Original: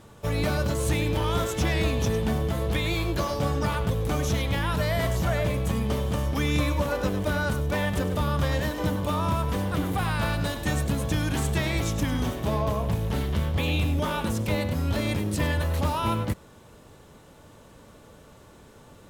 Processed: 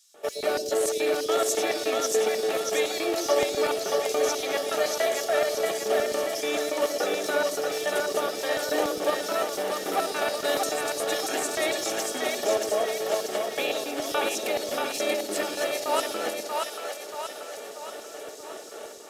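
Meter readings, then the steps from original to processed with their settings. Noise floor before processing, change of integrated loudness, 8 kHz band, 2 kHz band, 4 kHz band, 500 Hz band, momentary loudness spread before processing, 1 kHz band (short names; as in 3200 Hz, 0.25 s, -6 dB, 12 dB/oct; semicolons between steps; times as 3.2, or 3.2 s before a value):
-51 dBFS, 0.0 dB, +7.5 dB, +1.0 dB, +3.5 dB, +5.5 dB, 2 LU, +1.5 dB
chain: in parallel at -10.5 dB: sample-rate reducer 1200 Hz; on the sum: downsampling 32000 Hz; bell 1000 Hz -11 dB 0.24 oct; AGC; limiter -14.5 dBFS, peak gain reduction 11.5 dB; HPF 290 Hz 12 dB/oct; LFO high-pass square 3.5 Hz 490–5400 Hz; notch comb 510 Hz; on a send: split-band echo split 520 Hz, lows 0.118 s, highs 0.633 s, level -3 dB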